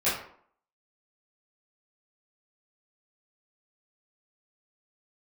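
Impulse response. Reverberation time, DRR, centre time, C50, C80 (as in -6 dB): 0.60 s, -12.5 dB, 46 ms, 4.0 dB, 8.0 dB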